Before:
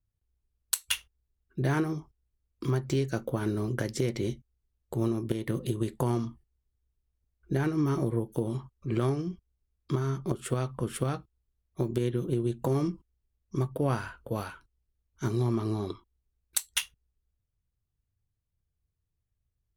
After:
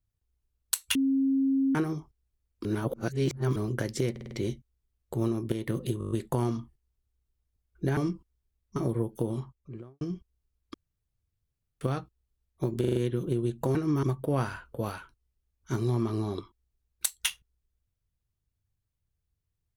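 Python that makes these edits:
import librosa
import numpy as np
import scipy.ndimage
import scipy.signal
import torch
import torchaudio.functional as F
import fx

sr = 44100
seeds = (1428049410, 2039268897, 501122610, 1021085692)

y = fx.studio_fade_out(x, sr, start_s=8.44, length_s=0.74)
y = fx.edit(y, sr, fx.bleep(start_s=0.95, length_s=0.8, hz=270.0, db=-22.0),
    fx.reverse_span(start_s=2.65, length_s=0.91),
    fx.stutter(start_s=4.11, slice_s=0.05, count=5),
    fx.stutter(start_s=5.79, slice_s=0.02, count=7),
    fx.swap(start_s=7.65, length_s=0.28, other_s=12.76, other_length_s=0.79),
    fx.room_tone_fill(start_s=9.91, length_s=1.07),
    fx.stutter(start_s=11.97, slice_s=0.04, count=5), tone=tone)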